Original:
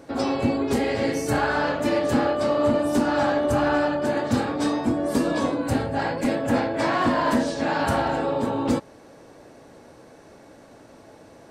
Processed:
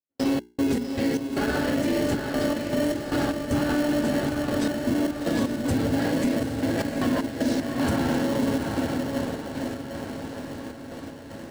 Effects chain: echo that smears into a reverb 1061 ms, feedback 59%, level -11 dB; trance gate ".x.x.x.xxxx" 77 bpm -60 dB; on a send: echo that smears into a reverb 760 ms, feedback 45%, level -6.5 dB; on the sum: dynamic bell 250 Hz, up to +5 dB, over -34 dBFS, Q 2.6; hum notches 60/120/180/240/300/360/420 Hz; in parallel at -6.5 dB: sample-and-hold 36×; on the sum: peaking EQ 980 Hz -6.5 dB 1.3 oct; peak limiter -15.5 dBFS, peak gain reduction 9.5 dB

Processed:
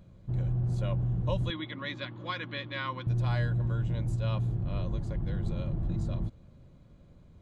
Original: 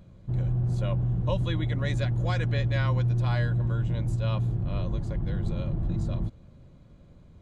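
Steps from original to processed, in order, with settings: 1.50–3.07 s: cabinet simulation 290–4500 Hz, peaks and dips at 290 Hz +5 dB, 440 Hz -9 dB, 710 Hz -10 dB, 1.1 kHz +7 dB, 2.2 kHz +3 dB, 3.4 kHz +6 dB; trim -3 dB

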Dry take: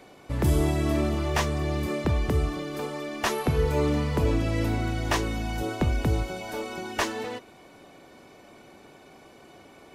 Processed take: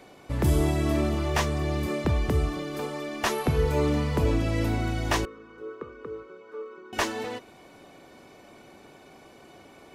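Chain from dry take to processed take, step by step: 5.25–6.93 s: two resonant band-passes 730 Hz, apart 1.4 oct

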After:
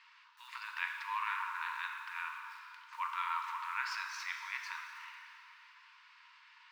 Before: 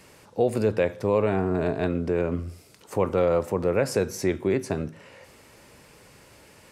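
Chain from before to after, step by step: low-pass 4.1 kHz 24 dB/octave; transient shaper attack -5 dB, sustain +4 dB; in parallel at -10 dB: small samples zeroed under -38.5 dBFS; on the sum: brick-wall FIR high-pass 890 Hz; plate-style reverb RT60 3 s, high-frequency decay 0.8×, DRR 3 dB; trim -5 dB

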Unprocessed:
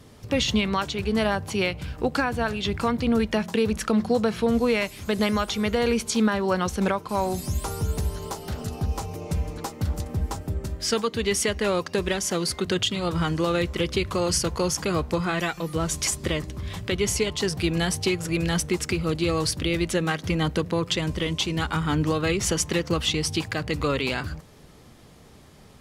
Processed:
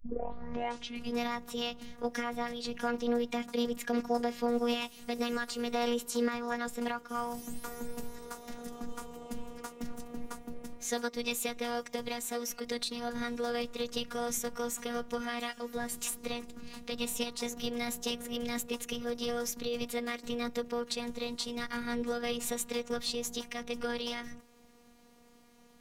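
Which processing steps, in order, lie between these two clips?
tape start-up on the opening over 1.22 s; formant shift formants +4 st; robot voice 239 Hz; trim -8 dB

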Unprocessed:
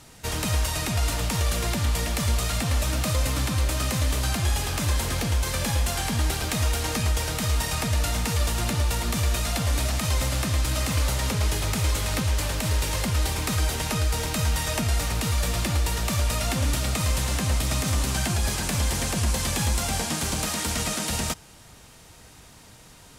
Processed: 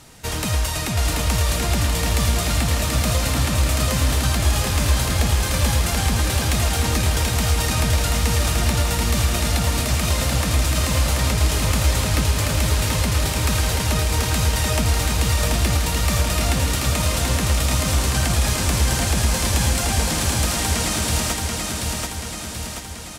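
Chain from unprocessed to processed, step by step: feedback delay 733 ms, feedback 57%, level -3 dB; trim +3 dB

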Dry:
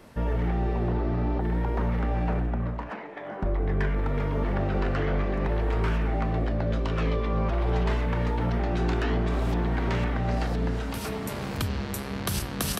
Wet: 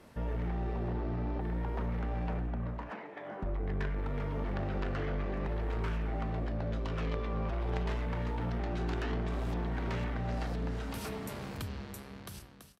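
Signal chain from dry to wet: fade out at the end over 1.77 s; Chebyshev shaper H 3 -11 dB, 5 -17 dB, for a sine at -14.5 dBFS; trim -4.5 dB

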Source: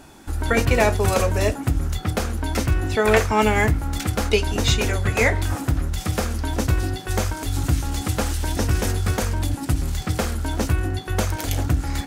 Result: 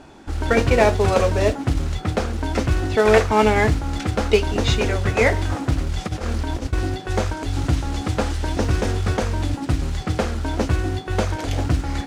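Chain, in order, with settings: peaking EQ 490 Hz +4 dB 1.9 oct; 5.84–6.73 s: compressor with a negative ratio -24 dBFS, ratio -0.5; modulation noise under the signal 14 dB; distance through air 86 m

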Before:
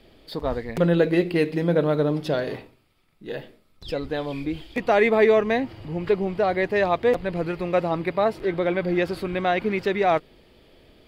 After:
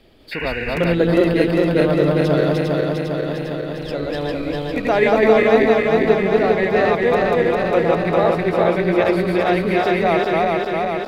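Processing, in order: backward echo that repeats 201 ms, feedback 83%, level -1 dB; painted sound noise, 0.31–0.95 s, 1.4–2.9 kHz -30 dBFS; trim +1 dB

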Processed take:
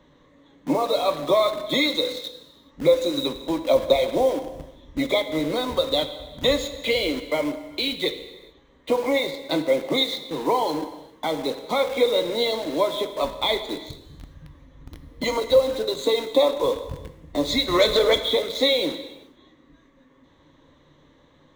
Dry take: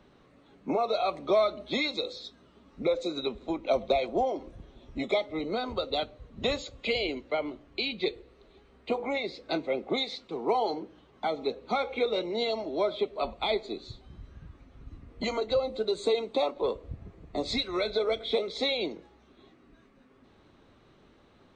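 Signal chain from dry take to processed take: 17.68–18.19 s: waveshaping leveller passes 2; rippled EQ curve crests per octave 1.1, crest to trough 10 dB; in parallel at -5.5 dB: bit crusher 6-bit; on the sum: gated-style reverb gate 450 ms falling, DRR 8.5 dB; trim +1.5 dB

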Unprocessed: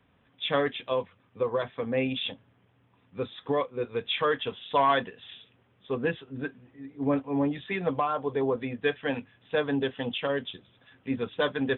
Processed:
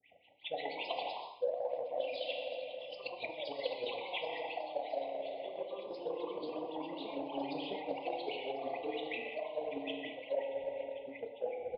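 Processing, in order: tape stop on the ending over 0.41 s; wah-wah 5.4 Hz 530–2900 Hz, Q 11; gain riding within 5 dB 0.5 s; FFT band-reject 850–1900 Hz; on a send: feedback delay 541 ms, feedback 57%, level -23.5 dB; on the sum: FDN reverb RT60 1.9 s, low-frequency decay 1×, high-frequency decay 0.65×, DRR 2.5 dB; reverse; compression 5:1, threshold -55 dBFS, peak gain reduction 24.5 dB; reverse; bass shelf 100 Hz +10.5 dB; phase dispersion highs, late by 50 ms, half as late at 1.9 kHz; ever faster or slower copies 175 ms, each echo +2 st, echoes 3; transient shaper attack +6 dB, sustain +2 dB; trim +13.5 dB

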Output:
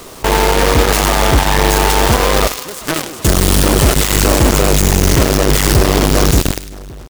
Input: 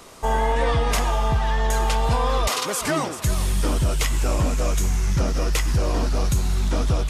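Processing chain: fade out at the end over 0.81 s; bass shelf 240 Hz +4 dB; band-stop 2.3 kHz; in parallel at -2 dB: peak limiter -20 dBFS, peak gain reduction 10.5 dB; on the sum: delay 88 ms -15.5 dB; companded quantiser 2-bit; peaking EQ 370 Hz +5 dB 0.82 oct; on a send: feedback echo behind a high-pass 102 ms, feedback 34%, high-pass 2 kHz, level -11 dB; on the sum: trim -5 dB

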